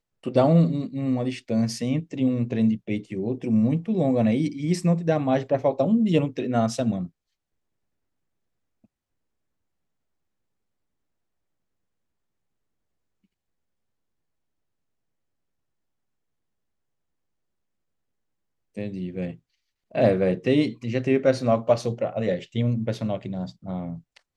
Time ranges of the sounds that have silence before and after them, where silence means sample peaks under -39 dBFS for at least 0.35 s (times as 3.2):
18.77–19.35